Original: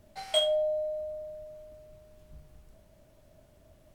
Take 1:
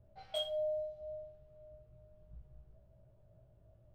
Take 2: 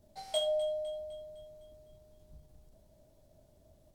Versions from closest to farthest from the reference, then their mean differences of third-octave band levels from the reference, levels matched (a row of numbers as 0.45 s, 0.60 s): 2, 1; 2.0 dB, 3.5 dB